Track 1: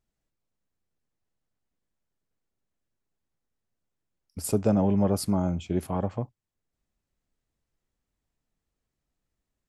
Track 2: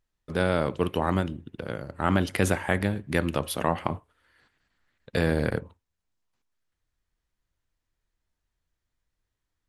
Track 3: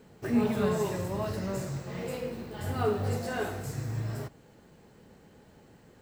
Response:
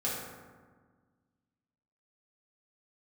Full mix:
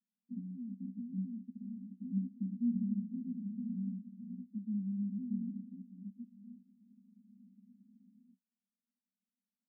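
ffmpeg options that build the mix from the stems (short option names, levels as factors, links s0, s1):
-filter_complex "[0:a]aemphasis=mode=production:type=riaa,volume=0.708,asplit=2[s0][s1];[1:a]acompressor=threshold=0.0355:ratio=3,volume=1.26[s2];[2:a]acompressor=threshold=0.0316:ratio=6,adelay=2300,volume=1.12[s3];[s1]apad=whole_len=366807[s4];[s3][s4]sidechaincompress=threshold=0.0112:ratio=8:attack=16:release=833[s5];[s0][s2][s5]amix=inputs=3:normalize=0,asuperpass=centerf=220:order=12:qfactor=3.1"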